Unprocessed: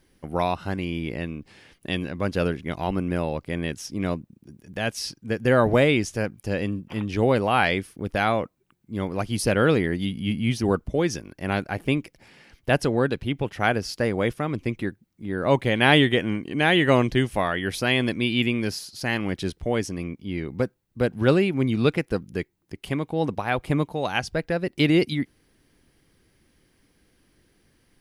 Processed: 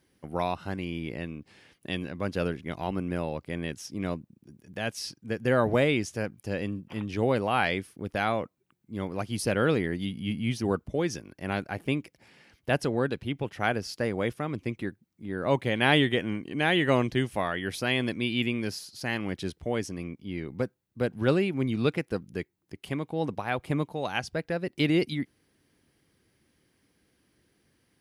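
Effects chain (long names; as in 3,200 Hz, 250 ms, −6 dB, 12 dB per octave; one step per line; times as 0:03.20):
high-pass filter 71 Hz
level −5 dB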